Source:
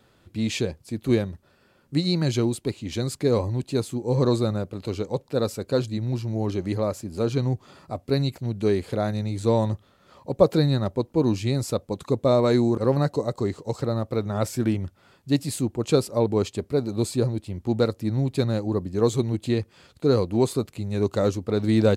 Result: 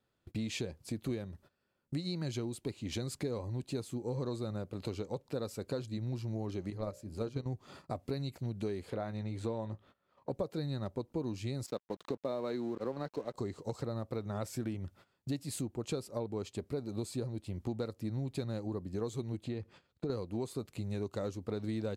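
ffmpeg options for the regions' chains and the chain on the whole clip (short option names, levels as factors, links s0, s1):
-filter_complex "[0:a]asettb=1/sr,asplit=3[s0][s1][s2];[s0]atrim=end=6.704[s3];[s1]atrim=start=6.7:end=7.46,asetpts=PTS-STARTPTS,afade=t=in:d=0.004:c=qsin,afade=t=out:st=0.756:d=0.004:c=qsin,bandreject=f=60:t=h:w=6,bandreject=f=120:t=h:w=6,bandreject=f=180:t=h:w=6,bandreject=f=240:t=h:w=6,bandreject=f=300:t=h:w=6,bandreject=f=360:t=h:w=6,bandreject=f=420:t=h:w=6,bandreject=f=480:t=h:w=6,bandreject=f=540:t=h:w=6,bandreject=f=600:t=h:w=6,agate=range=0.316:threshold=0.0562:ratio=16:release=100:detection=peak,lowshelf=f=74:g=11[s4];[s2]atrim=start=7.456[s5];[s3][s4]acrossfade=d=0.004:c1=hsin:c2=qsin[s6];[s6][s5]acrossfade=d=0.004:c1=qsin:c2=hsin,asettb=1/sr,asplit=3[s7][s8][s9];[s7]atrim=end=8.904[s10];[s8]atrim=start=8.9:end=10.31,asetpts=PTS-STARTPTS,afade=t=in:d=0.004:c=qsin,afade=t=out:st=1.406:d=0.004:c=qsin,bass=f=250:g=-5,treble=f=4000:g=-11,asplit=2[s11][s12];[s12]adelay=18,volume=0.282[s13];[s11][s13]amix=inputs=2:normalize=0,atrim=end_sample=62181[s14];[s9]atrim=start=10.306[s15];[s10][s14]acrossfade=d=0.004:c1=hsin:c2=qsin[s16];[s16][s15]acrossfade=d=0.004:c1=qsin:c2=hsin,asettb=1/sr,asplit=3[s17][s18][s19];[s17]atrim=end=11.664[s20];[s18]atrim=start=11.66:end=13.34,asetpts=PTS-STARTPTS,afade=t=in:d=0.004:c=qsin,afade=t=out:st=1.676:d=0.004:c=qsin,acrossover=split=170 5900:gain=0.141 1 0.0631[s21][s22][s23];[s21][s22][s23]amix=inputs=3:normalize=0,aeval=exprs='sgn(val(0))*max(abs(val(0))-0.00668,0)':c=same[s24];[s19]atrim=start=13.336[s25];[s20][s24]acrossfade=d=0.004:c1=hsin:c2=qsin[s26];[s26][s25]acrossfade=d=0.004:c1=qsin:c2=hsin,asettb=1/sr,asplit=3[s27][s28][s29];[s27]atrim=end=19.434[s30];[s28]atrim=start=19.43:end=20.1,asetpts=PTS-STARTPTS,afade=t=in:d=0.004:c=qsin,afade=t=out:st=0.666:d=0.004:c=qsin,lowpass=f=2900:p=1,acompressor=threshold=0.0398:ratio=2:attack=3.2:release=140:knee=1:detection=peak[s31];[s29]atrim=start=20.096[s32];[s30][s31]acrossfade=d=0.004:c1=hsin:c2=qsin[s33];[s33][s32]acrossfade=d=0.004:c1=qsin:c2=hsin,agate=range=0.0891:threshold=0.00398:ratio=16:detection=peak,acompressor=threshold=0.0178:ratio=6"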